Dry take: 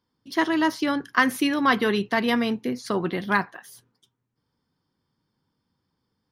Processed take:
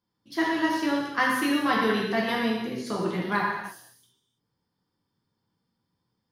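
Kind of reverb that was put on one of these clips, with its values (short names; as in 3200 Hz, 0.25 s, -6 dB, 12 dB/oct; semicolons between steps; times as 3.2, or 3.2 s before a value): non-linear reverb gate 0.36 s falling, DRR -4.5 dB; gain -8 dB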